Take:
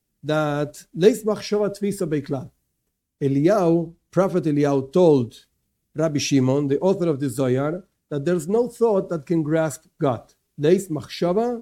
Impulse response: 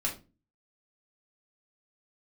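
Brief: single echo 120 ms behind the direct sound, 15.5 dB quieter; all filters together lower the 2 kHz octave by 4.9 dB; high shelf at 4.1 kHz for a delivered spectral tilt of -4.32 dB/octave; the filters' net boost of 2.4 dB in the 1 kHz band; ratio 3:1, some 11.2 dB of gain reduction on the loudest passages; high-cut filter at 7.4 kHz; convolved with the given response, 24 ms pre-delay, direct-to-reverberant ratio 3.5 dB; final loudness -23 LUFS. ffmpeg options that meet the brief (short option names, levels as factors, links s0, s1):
-filter_complex "[0:a]lowpass=7400,equalizer=f=1000:t=o:g=6,equalizer=f=2000:t=o:g=-8.5,highshelf=f=4100:g=-7.5,acompressor=threshold=0.0631:ratio=3,aecho=1:1:120:0.168,asplit=2[s0][s1];[1:a]atrim=start_sample=2205,adelay=24[s2];[s1][s2]afir=irnorm=-1:irlink=0,volume=0.376[s3];[s0][s3]amix=inputs=2:normalize=0,volume=1.5"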